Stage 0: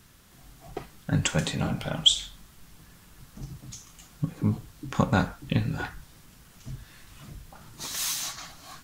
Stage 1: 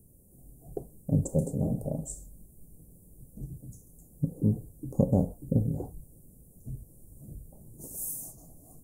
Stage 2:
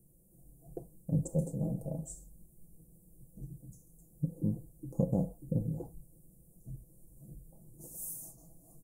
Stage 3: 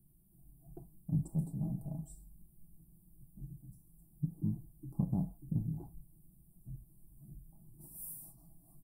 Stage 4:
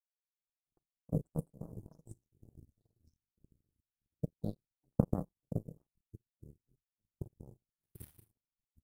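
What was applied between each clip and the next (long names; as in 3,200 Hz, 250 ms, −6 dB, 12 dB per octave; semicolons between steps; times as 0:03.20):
elliptic band-stop filter 530–9,200 Hz, stop band 60 dB; dynamic equaliser 750 Hz, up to +4 dB, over −47 dBFS, Q 0.8
comb filter 6 ms; level −7.5 dB
phaser with its sweep stopped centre 1,900 Hz, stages 6; level −1 dB
delay with pitch and tempo change per echo 148 ms, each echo −6 semitones, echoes 2, each echo −6 dB; power curve on the samples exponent 3; level +10.5 dB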